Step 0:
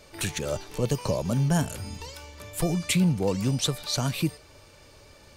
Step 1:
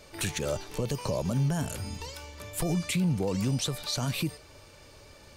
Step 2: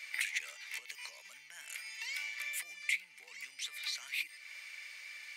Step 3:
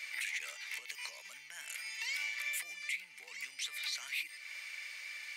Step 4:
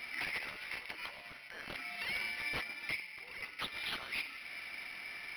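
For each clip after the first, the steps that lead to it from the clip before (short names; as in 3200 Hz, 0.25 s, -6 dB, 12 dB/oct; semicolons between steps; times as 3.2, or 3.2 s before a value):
limiter -20 dBFS, peak gain reduction 8.5 dB
compressor 10:1, threshold -38 dBFS, peak gain reduction 14.5 dB; resonant high-pass 2100 Hz, resonance Q 8.8
limiter -30.5 dBFS, peak gain reduction 10 dB; gain +3 dB
spring tank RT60 2.2 s, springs 42/47 ms, chirp 60 ms, DRR 7 dB; decimation joined by straight lines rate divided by 6×; gain +2 dB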